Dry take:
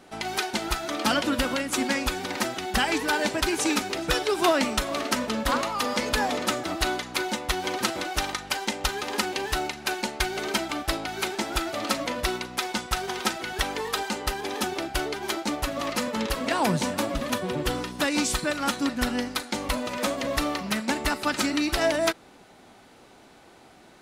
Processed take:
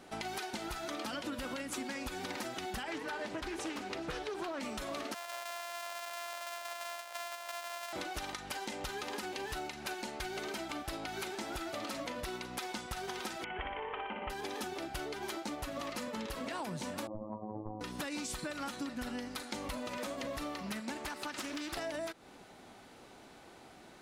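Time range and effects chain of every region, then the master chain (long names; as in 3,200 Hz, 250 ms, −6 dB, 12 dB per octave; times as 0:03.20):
0:02.83–0:04.60: high-shelf EQ 5,000 Hz −9.5 dB + mains-hum notches 50/100/150/200/250/300/350/400/450 Hz + highs frequency-modulated by the lows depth 0.33 ms
0:05.14–0:07.93: samples sorted by size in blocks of 128 samples + elliptic high-pass filter 590 Hz, stop band 70 dB
0:13.44–0:14.30: Chebyshev low-pass with heavy ripple 3,200 Hz, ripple 6 dB + flutter between parallel walls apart 10.2 metres, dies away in 0.8 s
0:17.07–0:17.81: Butterworth low-pass 1,100 Hz 96 dB per octave + phases set to zero 107 Hz
0:20.97–0:21.77: low-shelf EQ 240 Hz −8.5 dB + downward compressor 2.5 to 1, threshold −28 dBFS + highs frequency-modulated by the lows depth 0.35 ms
whole clip: brickwall limiter −18 dBFS; downward compressor, threshold −34 dBFS; level −3 dB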